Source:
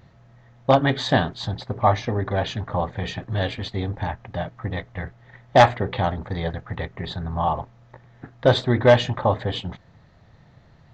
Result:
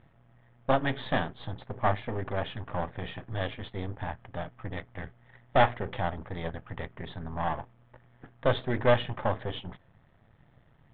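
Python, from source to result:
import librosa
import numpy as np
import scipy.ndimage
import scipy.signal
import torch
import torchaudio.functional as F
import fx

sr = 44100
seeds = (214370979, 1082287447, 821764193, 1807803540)

y = np.where(x < 0.0, 10.0 ** (-12.0 / 20.0) * x, x)
y = scipy.signal.sosfilt(scipy.signal.ellip(4, 1.0, 40, 3400.0, 'lowpass', fs=sr, output='sos'), y)
y = y * librosa.db_to_amplitude(-4.5)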